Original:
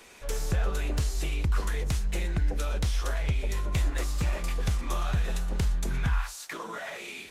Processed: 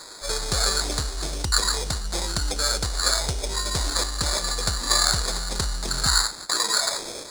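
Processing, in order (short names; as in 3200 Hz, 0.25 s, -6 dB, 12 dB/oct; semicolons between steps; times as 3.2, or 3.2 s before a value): EQ curve 160 Hz 0 dB, 1400 Hz +14 dB, 3600 Hz -2 dB; sample-rate reducer 2900 Hz, jitter 0%; band shelf 6100 Hz +15 dB; gain -2 dB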